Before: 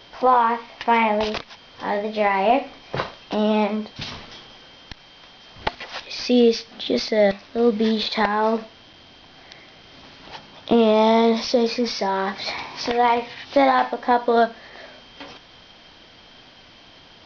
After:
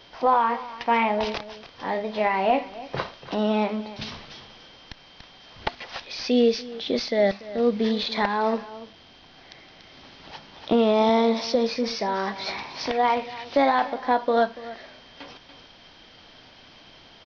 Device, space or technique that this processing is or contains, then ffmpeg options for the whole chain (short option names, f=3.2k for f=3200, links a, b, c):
ducked delay: -filter_complex "[0:a]asplit=3[a][b][c];[b]adelay=288,volume=-4dB[d];[c]apad=whole_len=773439[e];[d][e]sidechaincompress=threshold=-32dB:ratio=3:attack=6.2:release=1300[f];[a][f]amix=inputs=2:normalize=0,asettb=1/sr,asplit=3[g][h][i];[g]atrim=end=11.094[j];[h]atrim=start=11.09:end=11.55,asetpts=PTS-STARTPTS,afade=t=in:d=0.004:c=qsin,afade=t=out:st=0.456:d=0.004:c=qsin,highpass=110[k];[i]atrim=start=11.546[l];[j][k]acrossfade=d=0.004:c1=hsin:c2=qsin[m];[m][l]acrossfade=d=0.004:c1=qsin:c2=hsin,volume=-3.5dB"